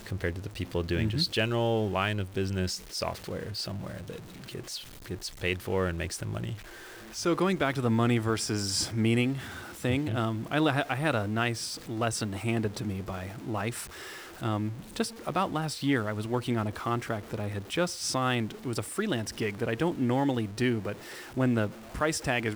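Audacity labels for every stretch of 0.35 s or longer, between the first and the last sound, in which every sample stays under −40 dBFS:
6.590000	7.140000	silence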